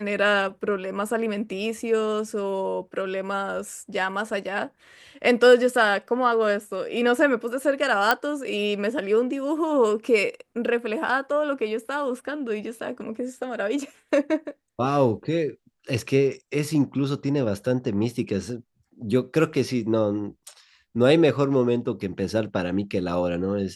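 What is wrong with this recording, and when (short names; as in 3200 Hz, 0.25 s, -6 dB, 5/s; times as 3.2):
8.11 pop -5 dBFS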